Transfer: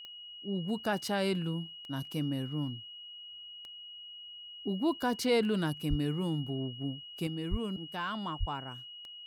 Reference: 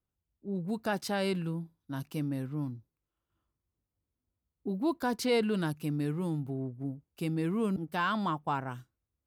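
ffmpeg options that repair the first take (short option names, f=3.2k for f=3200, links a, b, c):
-filter_complex "[0:a]adeclick=t=4,bandreject=f=2.9k:w=30,asplit=3[a][b][c];[a]afade=t=out:st=5.89:d=0.02[d];[b]highpass=f=140:w=0.5412,highpass=f=140:w=1.3066,afade=t=in:st=5.89:d=0.02,afade=t=out:st=6.01:d=0.02[e];[c]afade=t=in:st=6.01:d=0.02[f];[d][e][f]amix=inputs=3:normalize=0,asplit=3[g][h][i];[g]afade=t=out:st=7.5:d=0.02[j];[h]highpass=f=140:w=0.5412,highpass=f=140:w=1.3066,afade=t=in:st=7.5:d=0.02,afade=t=out:st=7.62:d=0.02[k];[i]afade=t=in:st=7.62:d=0.02[l];[j][k][l]amix=inputs=3:normalize=0,asplit=3[m][n][o];[m]afade=t=out:st=8.39:d=0.02[p];[n]highpass=f=140:w=0.5412,highpass=f=140:w=1.3066,afade=t=in:st=8.39:d=0.02,afade=t=out:st=8.51:d=0.02[q];[o]afade=t=in:st=8.51:d=0.02[r];[p][q][r]amix=inputs=3:normalize=0,asetnsamples=n=441:p=0,asendcmd='7.27 volume volume 6dB',volume=0dB"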